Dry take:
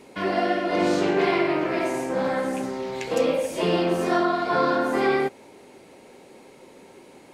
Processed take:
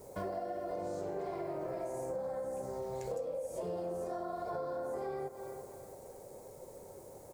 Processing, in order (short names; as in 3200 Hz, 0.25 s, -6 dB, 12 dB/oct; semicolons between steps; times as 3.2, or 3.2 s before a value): on a send: feedback echo 0.335 s, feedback 36%, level -19 dB; on the sum: bit-crush 9-bit; in parallel at -1 dB: limiter -19.5 dBFS, peak gain reduction 8.5 dB; on the sum: EQ curve 110 Hz 0 dB, 260 Hz -17 dB, 550 Hz +2 dB, 2800 Hz -28 dB, 7500 Hz -8 dB; compressor 6:1, threshold -32 dBFS, peak gain reduction 16 dB; bell 610 Hz -5 dB 2.4 oct